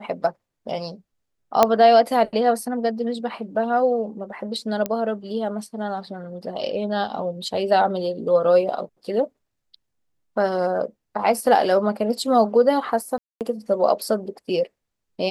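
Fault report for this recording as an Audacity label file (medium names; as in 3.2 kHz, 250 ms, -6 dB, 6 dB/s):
1.630000	1.630000	pop -1 dBFS
4.860000	4.860000	pop -10 dBFS
13.180000	13.410000	dropout 228 ms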